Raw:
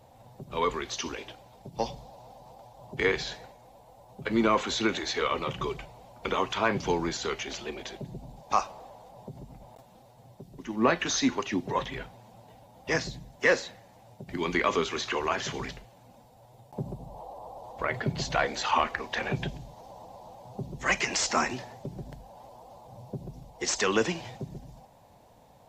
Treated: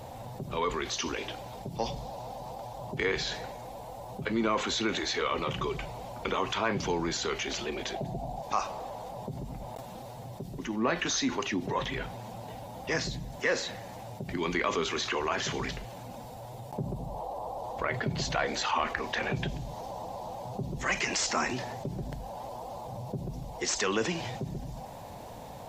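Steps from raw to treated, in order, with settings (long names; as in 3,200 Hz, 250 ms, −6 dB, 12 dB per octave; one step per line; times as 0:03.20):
0:07.94–0:08.42: parametric band 710 Hz +15 dB 0.38 octaves
envelope flattener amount 50%
level −6 dB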